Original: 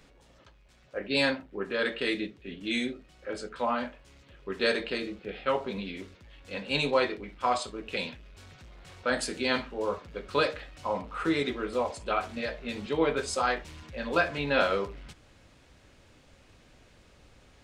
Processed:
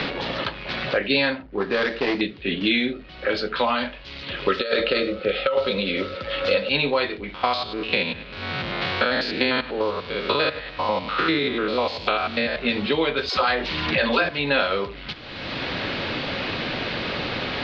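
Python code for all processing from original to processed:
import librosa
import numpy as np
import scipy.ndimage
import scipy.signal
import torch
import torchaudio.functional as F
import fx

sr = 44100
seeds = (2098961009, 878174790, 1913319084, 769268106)

y = fx.chain(x, sr, fx.median_filter(points=15),
    fx.lowpass(hz=7200.0, slope=12),
    fx.transformer_sat(knee_hz=520.0), at=(1.42, 2.21))
y = fx.chain(y, sr, fx.high_shelf(hz=8400.0, db=12.0),
    fx.over_compress(threshold_db=-31.0, ratio=-0.5),
    fx.small_body(hz=(540.0, 1300.0), ring_ms=45, db=17), at=(4.48, 6.69))
y = fx.chain(y, sr, fx.spec_steps(hold_ms=100),
    fx.highpass(hz=73.0, slope=12),
    fx.echo_feedback(ms=107, feedback_pct=52, wet_db=-22.0), at=(7.34, 12.56))
y = fx.chain(y, sr, fx.dispersion(late='lows', ms=76.0, hz=390.0),
    fx.env_flatten(amount_pct=50), at=(13.29, 14.29))
y = scipy.signal.sosfilt(scipy.signal.butter(8, 4500.0, 'lowpass', fs=sr, output='sos'), y)
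y = fx.high_shelf(y, sr, hz=2500.0, db=10.0)
y = fx.band_squash(y, sr, depth_pct=100)
y = y * 10.0 ** (5.5 / 20.0)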